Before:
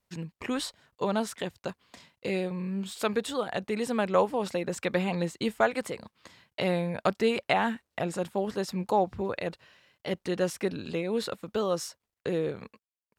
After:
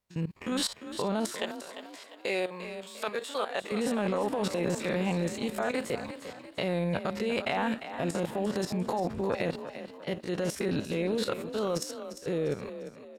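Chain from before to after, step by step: spectrogram pixelated in time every 50 ms; 1.29–3.72 s: high-pass 530 Hz 12 dB/octave; level held to a coarse grid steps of 19 dB; transient shaper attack -2 dB, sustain +7 dB; frequency-shifting echo 349 ms, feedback 42%, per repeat +33 Hz, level -11 dB; trim +9 dB

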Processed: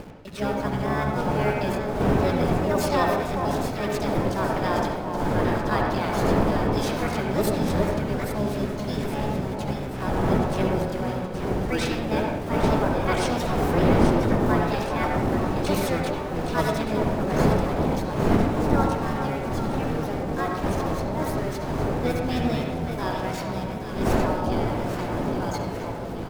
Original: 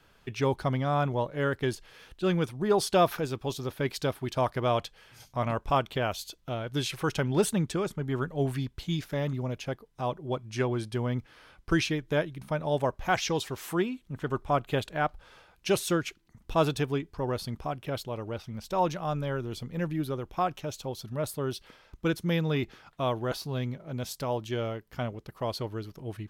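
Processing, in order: wind noise 390 Hz -29 dBFS; hum notches 60/120/180 Hz; in parallel at -5 dB: word length cut 6-bit, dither none; on the sum: echo whose repeats swap between lows and highs 411 ms, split 880 Hz, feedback 69%, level -4.5 dB; harmony voices -12 st -4 dB, +7 st 0 dB; reverberation RT60 0.70 s, pre-delay 61 ms, DRR 1.5 dB; trim -8.5 dB

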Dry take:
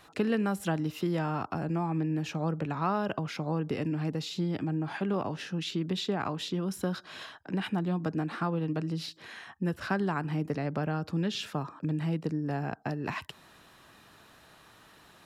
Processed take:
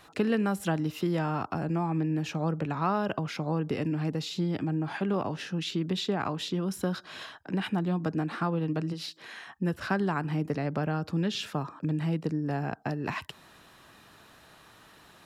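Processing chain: 8.92–9.57 s: high-pass 450 Hz -> 160 Hz 6 dB/octave; trim +1.5 dB

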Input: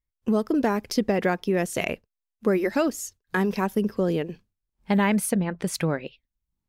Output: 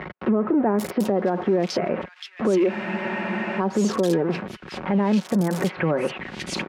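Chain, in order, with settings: jump at every zero crossing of -28.5 dBFS; high-pass 220 Hz 12 dB/octave; low-pass that closes with the level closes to 1.1 kHz, closed at -19.5 dBFS; comb 5.4 ms, depth 34%; in parallel at -2 dB: gain riding; on the sum: peak limiter -14.5 dBFS, peak gain reduction 11.5 dB; bands offset in time lows, highs 790 ms, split 2.2 kHz; spectral freeze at 2.71 s, 0.88 s; three bands compressed up and down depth 40%; trim +2 dB

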